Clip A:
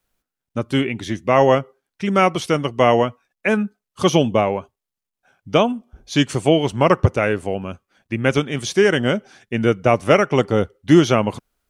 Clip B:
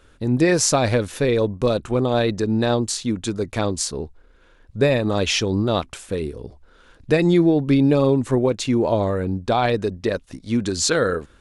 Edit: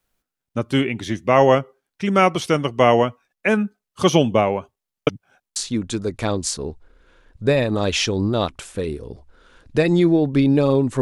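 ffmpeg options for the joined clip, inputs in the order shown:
-filter_complex "[0:a]apad=whole_dur=11.01,atrim=end=11.01,asplit=2[a][b];[a]atrim=end=5.072[c];[b]atrim=start=5.068:end=5.562,asetpts=PTS-STARTPTS,areverse[d];[1:a]atrim=start=2.898:end=8.35[e];[c][d]acrossfade=d=0.004:c1=hsin:c2=hsin[f];[f][e]acrossfade=d=0.004:c1=hsin:c2=hsin"

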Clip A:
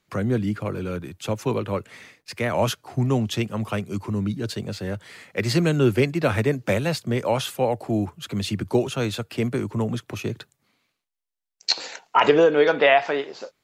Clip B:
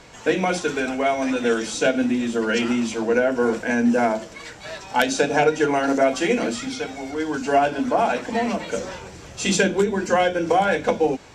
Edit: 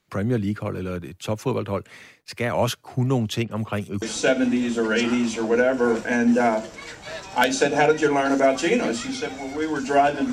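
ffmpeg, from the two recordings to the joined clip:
-filter_complex "[0:a]asettb=1/sr,asplit=3[a][b][c];[a]atrim=end=3.434[d];[b]atrim=start=3.43:end=4.02,asetpts=PTS-STARTPTS,afade=t=in:d=0.004:c=qsin,afade=t=out:st=0.586:d=0.004:c=qsin,acrossover=split=4400[e][f];[f]adelay=80[g];[e][g]amix=inputs=2:normalize=0,atrim=end_sample=26019[h];[c]atrim=start=4.016[i];[d][h]acrossfade=d=0.004:c1=hsin:c2=qsin[j];[j][i]acrossfade=d=0.004:c1=qsin:c2=hsin,apad=whole_dur=10.32,atrim=end=10.32,atrim=end=4.022[k];[1:a]atrim=start=1.598:end=7.9[l];[k][l]acrossfade=d=0.004:c1=hsin:c2=hsin"

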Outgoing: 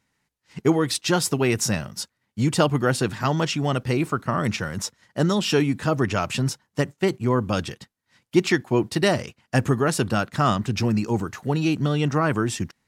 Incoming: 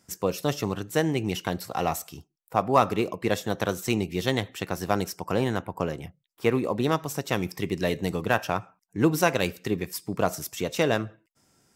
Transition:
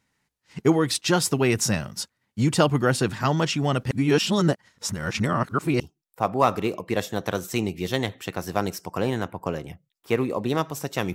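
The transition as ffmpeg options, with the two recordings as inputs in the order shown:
-filter_complex "[0:a]apad=whole_dur=11.14,atrim=end=11.14,asplit=2[a][b];[a]atrim=end=3.912[c];[b]atrim=start=3.908:end=5.802,asetpts=PTS-STARTPTS,areverse[d];[1:a]atrim=start=2.138:end=7.48[e];[c][d]acrossfade=d=0.004:c1=hsin:c2=hsin[f];[f][e]acrossfade=d=0.004:c1=hsin:c2=hsin"

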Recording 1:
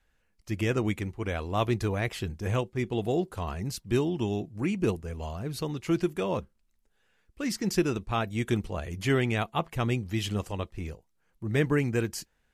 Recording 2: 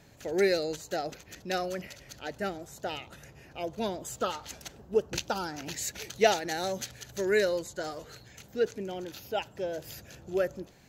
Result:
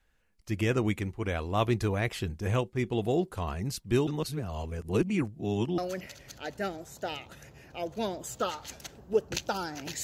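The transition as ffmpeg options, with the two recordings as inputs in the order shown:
-filter_complex "[0:a]apad=whole_dur=10.03,atrim=end=10.03,asplit=2[a][b];[a]atrim=end=4.072[c];[b]atrim=start=4.068:end=5.782,asetpts=PTS-STARTPTS,areverse[d];[1:a]atrim=start=1.588:end=5.84[e];[c][d]acrossfade=d=0.004:c1=hsin:c2=hsin[f];[f][e]acrossfade=d=0.004:c1=hsin:c2=hsin"

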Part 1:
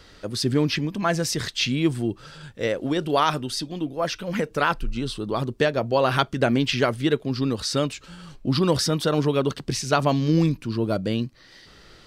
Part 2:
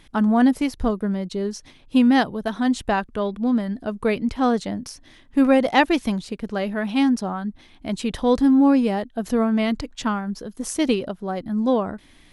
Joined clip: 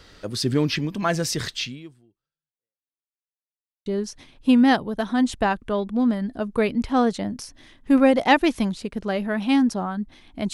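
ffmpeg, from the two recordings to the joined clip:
-filter_complex "[0:a]apad=whole_dur=10.53,atrim=end=10.53,asplit=2[a][b];[a]atrim=end=3.05,asetpts=PTS-STARTPTS,afade=t=out:st=1.55:d=1.5:c=exp[c];[b]atrim=start=3.05:end=3.86,asetpts=PTS-STARTPTS,volume=0[d];[1:a]atrim=start=1.33:end=8,asetpts=PTS-STARTPTS,afade=t=in:d=0.004:c=hsin[e];[c][d][e]concat=n=3:v=0:a=1"

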